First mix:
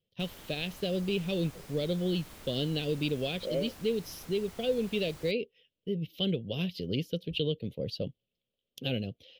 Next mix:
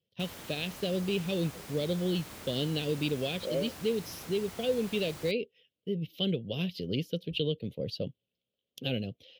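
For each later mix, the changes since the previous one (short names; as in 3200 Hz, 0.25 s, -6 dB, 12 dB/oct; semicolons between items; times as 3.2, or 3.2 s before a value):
background +5.0 dB; master: add HPF 75 Hz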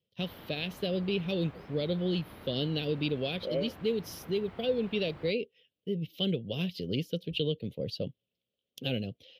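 background: add air absorption 470 m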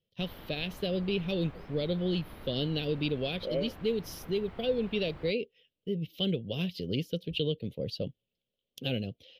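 master: remove HPF 75 Hz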